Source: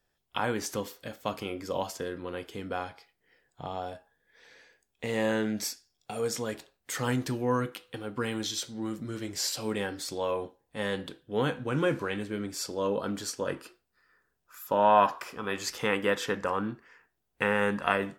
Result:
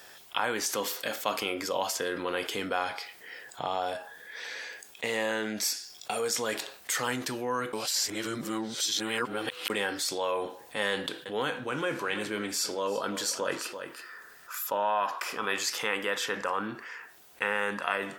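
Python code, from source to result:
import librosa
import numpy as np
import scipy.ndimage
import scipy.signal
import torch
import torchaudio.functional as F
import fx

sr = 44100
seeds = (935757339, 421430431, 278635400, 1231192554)

y = fx.highpass(x, sr, hz=130.0, slope=12, at=(0.72, 1.42))
y = fx.echo_single(y, sr, ms=336, db=-17.5, at=(10.92, 14.9))
y = fx.edit(y, sr, fx.reverse_span(start_s=7.73, length_s=1.97), tone=tone)
y = fx.rider(y, sr, range_db=10, speed_s=0.5)
y = fx.highpass(y, sr, hz=860.0, slope=6)
y = fx.env_flatten(y, sr, amount_pct=50)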